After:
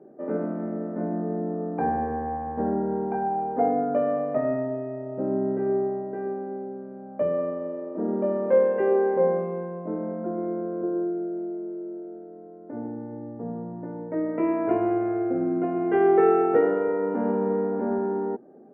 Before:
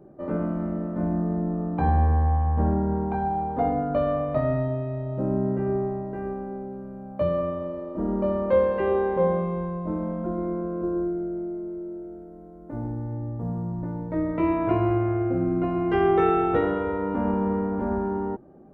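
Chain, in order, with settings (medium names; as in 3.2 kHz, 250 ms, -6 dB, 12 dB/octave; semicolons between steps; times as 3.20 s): cabinet simulation 230–2300 Hz, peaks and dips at 240 Hz +7 dB, 440 Hz +9 dB, 720 Hz +4 dB, 1.1 kHz -5 dB, 1.7 kHz +3 dB; trim -2.5 dB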